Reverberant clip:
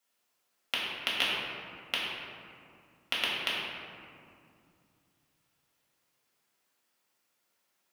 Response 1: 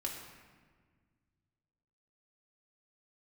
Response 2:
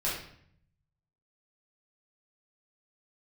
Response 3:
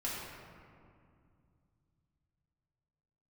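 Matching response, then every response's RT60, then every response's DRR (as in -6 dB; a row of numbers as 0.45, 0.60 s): 3; 1.6, 0.65, 2.3 s; -1.5, -7.5, -7.0 dB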